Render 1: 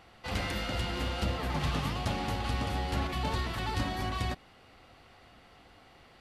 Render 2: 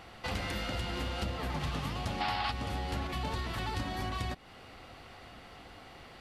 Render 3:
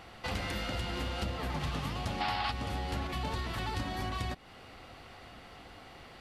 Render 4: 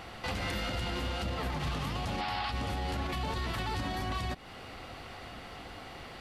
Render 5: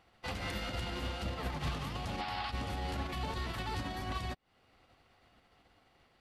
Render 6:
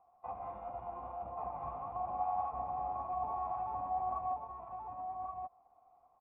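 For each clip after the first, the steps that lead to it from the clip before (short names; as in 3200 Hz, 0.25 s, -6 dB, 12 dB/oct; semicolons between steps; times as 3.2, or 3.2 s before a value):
spectral gain 2.21–2.51, 620–5600 Hz +12 dB; compressor 3:1, threshold -41 dBFS, peak gain reduction 14.5 dB; gain +6 dB
nothing audible
limiter -31 dBFS, peak gain reduction 9.5 dB; gain +5.5 dB
upward expander 2.5:1, over -51 dBFS
vocal tract filter a; air absorption 330 m; echo 1.129 s -4.5 dB; gain +11 dB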